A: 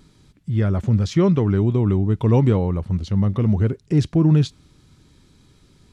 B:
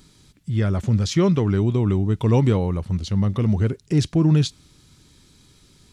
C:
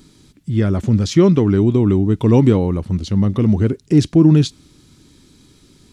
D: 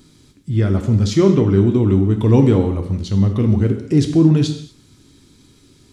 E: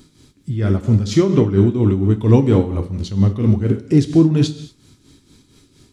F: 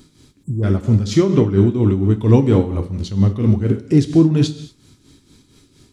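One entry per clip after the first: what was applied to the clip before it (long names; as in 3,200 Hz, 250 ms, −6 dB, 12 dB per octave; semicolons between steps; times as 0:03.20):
high-shelf EQ 2,700 Hz +9.5 dB; level −1.5 dB
parametric band 290 Hz +8 dB 1.1 octaves; level +2 dB
convolution reverb, pre-delay 3 ms, DRR 5 dB; level −2 dB
amplitude tremolo 4.3 Hz, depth 64%; level +2 dB
time-frequency box erased 0:00.43–0:00.63, 1,200–6,700 Hz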